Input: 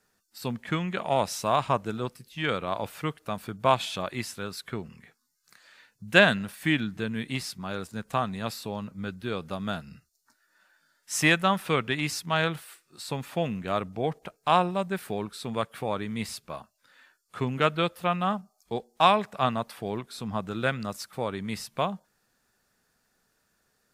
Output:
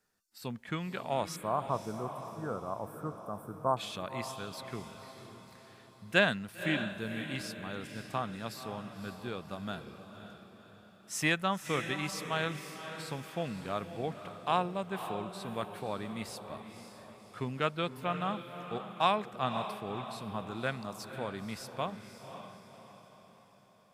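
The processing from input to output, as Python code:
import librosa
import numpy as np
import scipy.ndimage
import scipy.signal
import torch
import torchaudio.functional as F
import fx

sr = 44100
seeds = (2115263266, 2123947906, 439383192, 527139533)

y = fx.cheby2_bandstop(x, sr, low_hz=2100.0, high_hz=5800.0, order=4, stop_db=40, at=(1.36, 3.77))
y = fx.echo_diffused(y, sr, ms=541, feedback_pct=48, wet_db=-9.5)
y = y * librosa.db_to_amplitude(-7.5)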